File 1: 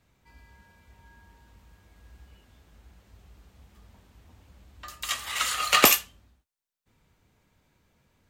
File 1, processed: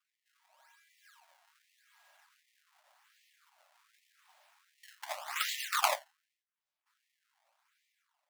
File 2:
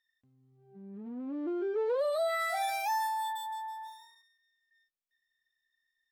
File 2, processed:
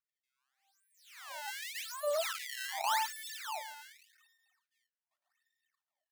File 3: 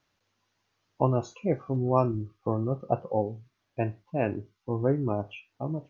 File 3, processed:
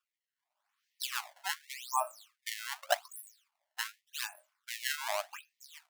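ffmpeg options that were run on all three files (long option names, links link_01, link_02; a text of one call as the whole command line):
ffmpeg -i in.wav -af "acrusher=samples=21:mix=1:aa=0.000001:lfo=1:lforange=33.6:lforate=0.86,dynaudnorm=framelen=200:gausssize=7:maxgain=7.5dB,afftfilt=real='re*gte(b*sr/1024,540*pow(1800/540,0.5+0.5*sin(2*PI*1.3*pts/sr)))':imag='im*gte(b*sr/1024,540*pow(1800/540,0.5+0.5*sin(2*PI*1.3*pts/sr)))':win_size=1024:overlap=0.75,volume=-8dB" out.wav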